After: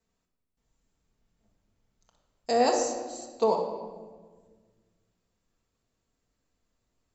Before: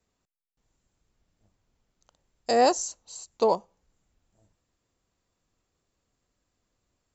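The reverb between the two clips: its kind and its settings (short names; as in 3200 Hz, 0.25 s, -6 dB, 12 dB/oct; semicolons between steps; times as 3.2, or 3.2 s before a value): shoebox room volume 1400 m³, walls mixed, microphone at 1.6 m; gain -4.5 dB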